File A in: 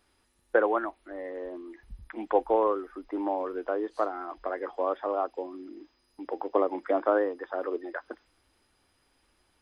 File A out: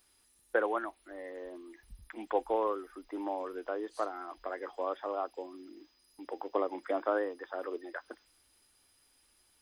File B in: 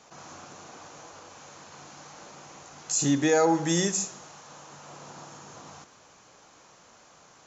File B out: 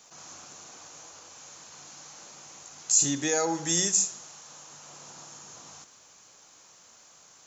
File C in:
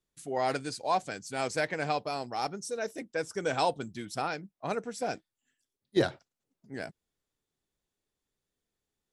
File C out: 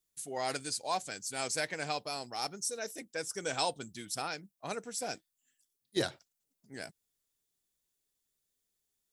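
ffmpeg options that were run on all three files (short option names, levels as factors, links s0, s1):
-af "crystalizer=i=4:c=0,volume=0.447"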